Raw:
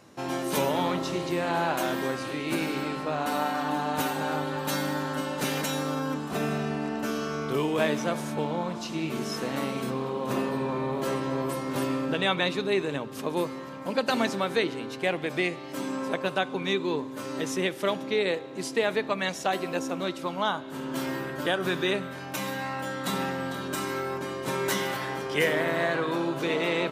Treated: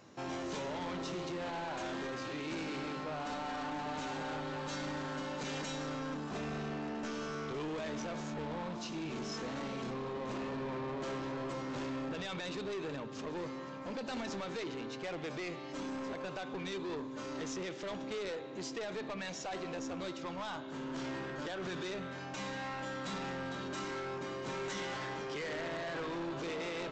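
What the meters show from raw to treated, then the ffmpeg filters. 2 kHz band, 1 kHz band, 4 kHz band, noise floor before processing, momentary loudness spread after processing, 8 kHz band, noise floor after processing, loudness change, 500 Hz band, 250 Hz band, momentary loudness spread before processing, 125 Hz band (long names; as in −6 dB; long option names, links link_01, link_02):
−11.5 dB, −11.0 dB, −11.0 dB, −39 dBFS, 3 LU, −10.5 dB, −44 dBFS, −11.0 dB, −11.5 dB, −10.0 dB, 6 LU, −10.0 dB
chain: -af "alimiter=limit=-19.5dB:level=0:latency=1:release=42,aresample=16000,asoftclip=type=tanh:threshold=-32dB,aresample=44100,volume=-4dB"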